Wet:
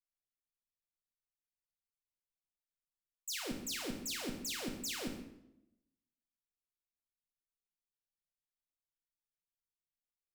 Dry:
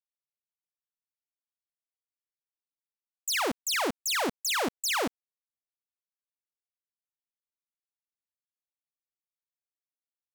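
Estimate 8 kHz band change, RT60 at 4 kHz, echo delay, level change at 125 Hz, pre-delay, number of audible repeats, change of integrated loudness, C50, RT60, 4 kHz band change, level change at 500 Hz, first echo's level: −9.5 dB, 0.60 s, 135 ms, −1.0 dB, 4 ms, 1, −11.0 dB, 6.5 dB, 0.85 s, −10.5 dB, −13.5 dB, −15.0 dB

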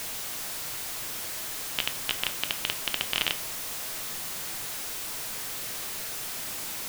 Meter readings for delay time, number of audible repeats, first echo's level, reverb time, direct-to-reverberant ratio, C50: no echo audible, no echo audible, no echo audible, 0.45 s, 8.0 dB, 15.0 dB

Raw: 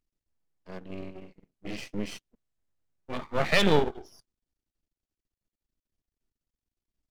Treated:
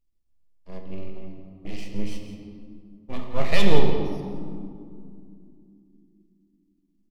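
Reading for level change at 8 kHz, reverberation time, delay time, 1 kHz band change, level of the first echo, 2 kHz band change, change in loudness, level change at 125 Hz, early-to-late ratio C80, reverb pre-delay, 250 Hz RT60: −1.5 dB, 2.6 s, 171 ms, −1.0 dB, −12.5 dB, −2.5 dB, −2.0 dB, +5.0 dB, 5.5 dB, 4 ms, 4.4 s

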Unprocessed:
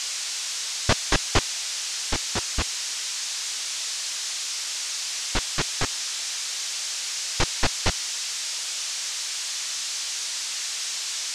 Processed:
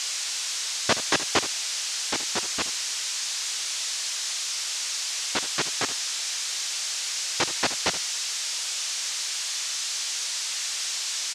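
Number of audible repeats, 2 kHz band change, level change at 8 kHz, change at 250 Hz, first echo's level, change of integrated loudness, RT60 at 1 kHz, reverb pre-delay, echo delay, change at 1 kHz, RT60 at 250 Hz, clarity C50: 1, 0.0 dB, 0.0 dB, −2.0 dB, −13.5 dB, 0.0 dB, no reverb audible, no reverb audible, 74 ms, 0.0 dB, no reverb audible, no reverb audible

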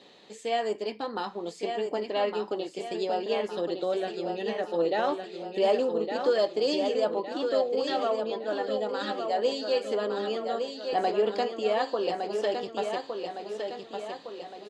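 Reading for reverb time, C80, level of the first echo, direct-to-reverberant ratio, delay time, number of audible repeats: no reverb audible, no reverb audible, −6.0 dB, no reverb audible, 1,161 ms, 5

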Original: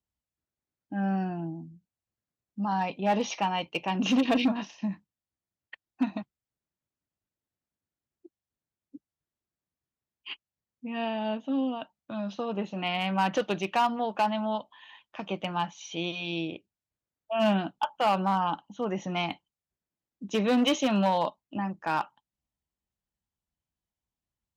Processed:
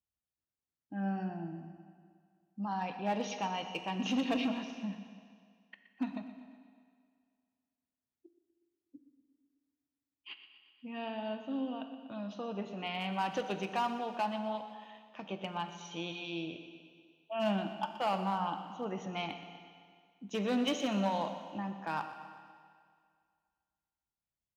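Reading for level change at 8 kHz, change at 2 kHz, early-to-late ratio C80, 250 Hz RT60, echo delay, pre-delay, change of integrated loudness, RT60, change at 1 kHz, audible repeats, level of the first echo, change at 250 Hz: can't be measured, −7.0 dB, 8.5 dB, 2.0 s, 122 ms, 15 ms, −7.5 dB, 2.0 s, −7.5 dB, 5, −14.0 dB, −7.0 dB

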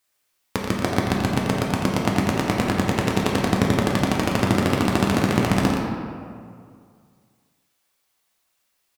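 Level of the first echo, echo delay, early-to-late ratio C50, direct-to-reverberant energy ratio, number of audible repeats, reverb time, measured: −8.0 dB, 86 ms, −0.5 dB, −3.5 dB, 2, 2.2 s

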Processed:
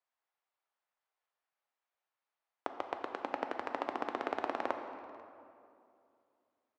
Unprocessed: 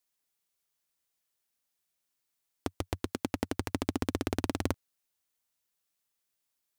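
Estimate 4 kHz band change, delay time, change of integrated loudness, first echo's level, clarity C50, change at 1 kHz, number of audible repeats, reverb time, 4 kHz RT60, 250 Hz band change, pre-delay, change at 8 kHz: −9.0 dB, 492 ms, −4.0 dB, −23.5 dB, 6.5 dB, +4.5 dB, 1, 2.6 s, 1.5 s, −11.0 dB, 7 ms, below −20 dB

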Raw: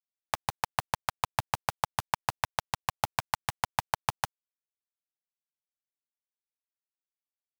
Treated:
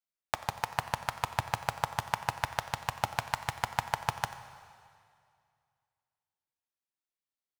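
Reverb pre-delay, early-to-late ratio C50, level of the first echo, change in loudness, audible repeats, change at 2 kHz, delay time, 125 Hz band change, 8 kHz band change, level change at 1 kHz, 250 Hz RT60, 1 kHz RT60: 7 ms, 11.0 dB, −17.5 dB, −1.0 dB, 1, +0.5 dB, 90 ms, +1.0 dB, −3.0 dB, −1.0 dB, 2.3 s, 2.3 s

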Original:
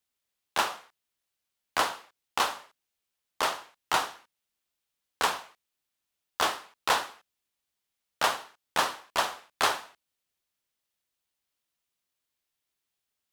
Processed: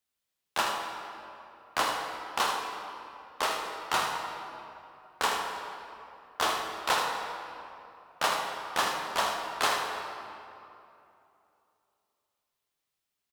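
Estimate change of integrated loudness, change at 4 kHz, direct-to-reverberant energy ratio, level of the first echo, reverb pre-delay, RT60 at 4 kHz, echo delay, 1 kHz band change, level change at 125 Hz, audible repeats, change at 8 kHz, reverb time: −1.5 dB, −0.5 dB, 0.5 dB, −8.0 dB, 9 ms, 1.7 s, 79 ms, +0.5 dB, +1.0 dB, 1, −0.5 dB, 2.8 s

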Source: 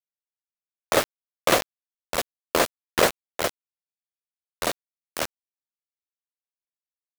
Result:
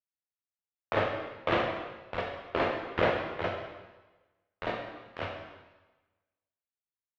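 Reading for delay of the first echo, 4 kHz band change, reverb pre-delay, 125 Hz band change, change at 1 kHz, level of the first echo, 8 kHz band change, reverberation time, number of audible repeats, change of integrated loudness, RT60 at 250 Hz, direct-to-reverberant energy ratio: no echo audible, −11.5 dB, 6 ms, +0.5 dB, −5.0 dB, no echo audible, below −35 dB, 1.2 s, no echo audible, −7.0 dB, 1.1 s, −1.0 dB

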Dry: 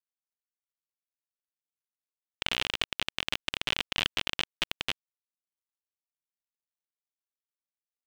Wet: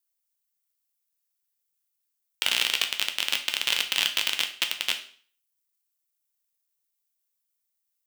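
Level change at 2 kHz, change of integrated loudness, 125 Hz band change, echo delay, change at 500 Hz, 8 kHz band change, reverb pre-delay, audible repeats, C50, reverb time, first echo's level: +5.0 dB, +6.5 dB, below −10 dB, no echo audible, −1.5 dB, +12.0 dB, 8 ms, no echo audible, 11.0 dB, 0.45 s, no echo audible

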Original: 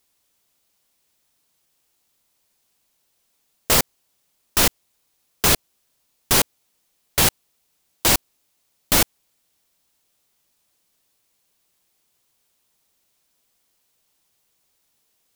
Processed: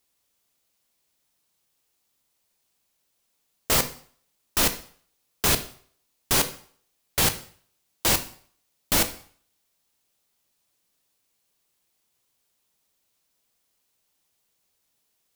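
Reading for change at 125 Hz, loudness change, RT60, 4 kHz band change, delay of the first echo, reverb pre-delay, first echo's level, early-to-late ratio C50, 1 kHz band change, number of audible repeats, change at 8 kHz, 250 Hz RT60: −4.0 dB, −4.5 dB, 0.50 s, −4.5 dB, no echo audible, 5 ms, no echo audible, 13.0 dB, −4.5 dB, no echo audible, −4.5 dB, 0.45 s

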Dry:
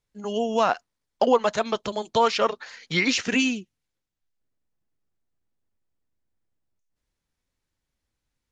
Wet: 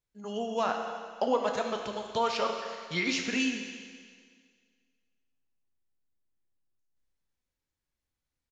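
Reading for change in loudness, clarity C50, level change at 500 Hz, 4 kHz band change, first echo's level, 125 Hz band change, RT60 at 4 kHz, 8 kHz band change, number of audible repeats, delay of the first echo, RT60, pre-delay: −7.5 dB, 4.5 dB, −7.5 dB, −6.5 dB, −16.0 dB, −7.5 dB, 1.9 s, can't be measured, 1, 237 ms, 1.9 s, 11 ms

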